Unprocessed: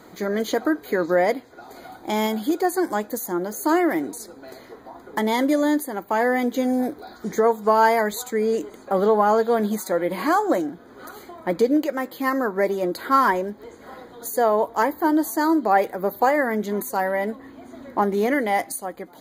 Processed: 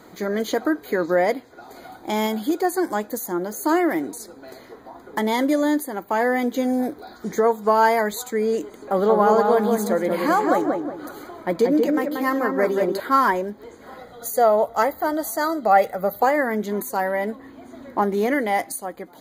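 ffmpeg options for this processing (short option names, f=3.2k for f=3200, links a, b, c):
-filter_complex "[0:a]asettb=1/sr,asplit=3[a][b][c];[a]atrim=end=8.644[d];[b]atrim=start=8.64:end=13,asetpts=PTS-STARTPTS,afade=t=in:d=0.004:c=qsin,afade=t=out:st=4.356:d=0.004:c=qsin,asplit=2[e][f];[f]adelay=183,lowpass=f=1.8k:p=1,volume=-3dB,asplit=2[g][h];[h]adelay=183,lowpass=f=1.8k:p=1,volume=0.38,asplit=2[i][j];[j]adelay=183,lowpass=f=1.8k:p=1,volume=0.38,asplit=2[k][l];[l]adelay=183,lowpass=f=1.8k:p=1,volume=0.38,asplit=2[m][n];[n]adelay=183,lowpass=f=1.8k:p=1,volume=0.38[o];[e][g][i][k][m][o]amix=inputs=6:normalize=0,atrim=end_sample=192276[p];[c]atrim=start=12.996[q];[d][p]acrossfade=d=0.004:c1=hsin:c2=qsin[r];[r][q]acrossfade=d=0.004:c1=qsin:c2=hsin,asettb=1/sr,asplit=3[s][t][u];[s]atrim=end=13.994[v];[t]atrim=start=13.99:end=16.23,asetpts=PTS-STARTPTS,afade=t=in:d=0.004:c=qsin,afade=t=out:st=2.236:d=0.004:c=qsin,aecho=1:1:1.5:0.63,atrim=end_sample=98784[w];[u]atrim=start=16.226[x];[v][w]acrossfade=d=0.004:c1=hsin:c2=qsin[y];[y][x]acrossfade=d=0.004:c1=qsin:c2=hsin"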